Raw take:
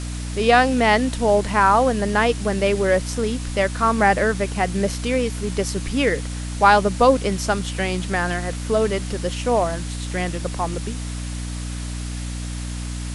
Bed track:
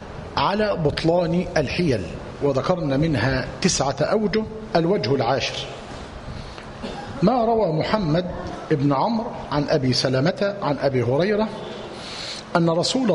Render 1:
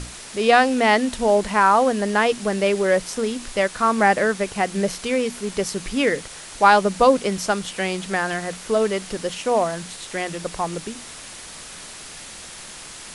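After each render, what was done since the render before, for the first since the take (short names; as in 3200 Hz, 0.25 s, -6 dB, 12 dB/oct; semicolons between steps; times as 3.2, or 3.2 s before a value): notches 60/120/180/240/300 Hz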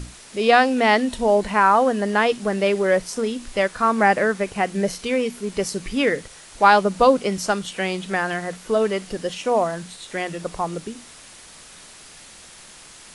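noise print and reduce 6 dB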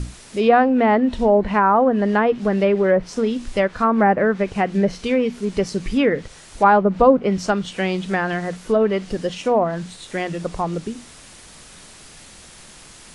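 treble ducked by the level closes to 1400 Hz, closed at -13.5 dBFS; low shelf 330 Hz +7.5 dB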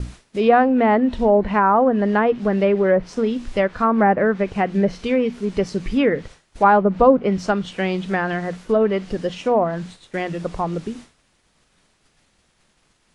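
high shelf 6400 Hz -11 dB; expander -34 dBFS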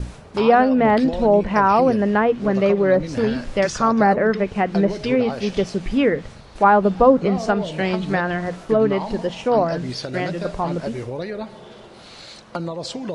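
add bed track -9 dB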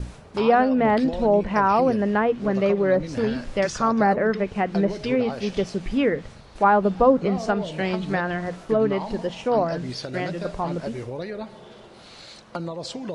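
gain -3.5 dB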